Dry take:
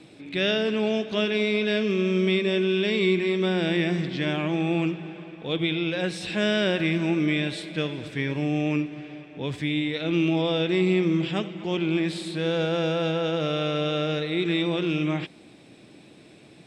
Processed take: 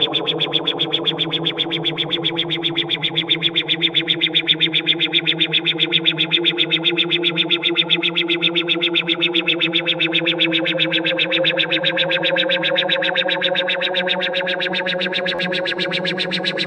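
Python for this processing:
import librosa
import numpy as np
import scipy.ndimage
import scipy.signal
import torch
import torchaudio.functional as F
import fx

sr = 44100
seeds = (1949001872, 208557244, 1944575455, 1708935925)

p1 = fx.spec_ripple(x, sr, per_octave=1.0, drift_hz=0.5, depth_db=6)
p2 = fx.over_compress(p1, sr, threshold_db=-30.0, ratio=-1.0)
p3 = fx.peak_eq(p2, sr, hz=86.0, db=-11.0, octaves=1.7)
p4 = p3 + fx.echo_single(p3, sr, ms=115, db=-15.5, dry=0)
p5 = fx.paulstretch(p4, sr, seeds[0], factor=29.0, window_s=0.25, from_s=5.53)
p6 = fx.high_shelf(p5, sr, hz=3400.0, db=6.5)
p7 = fx.dmg_noise_colour(p6, sr, seeds[1], colour='blue', level_db=-42.0)
p8 = fx.filter_lfo_lowpass(p7, sr, shape='sine', hz=7.6, low_hz=750.0, high_hz=3600.0, q=5.0)
p9 = fx.buffer_glitch(p8, sr, at_s=(15.34,), block=512, repeats=3)
y = p9 * 10.0 ** (5.0 / 20.0)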